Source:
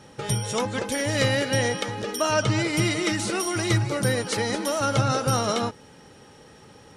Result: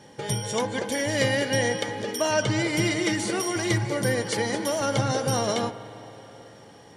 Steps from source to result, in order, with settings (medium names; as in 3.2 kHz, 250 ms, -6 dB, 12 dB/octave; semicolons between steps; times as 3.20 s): comb of notches 1.3 kHz; spring tank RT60 3.9 s, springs 41/54 ms, chirp 45 ms, DRR 12.5 dB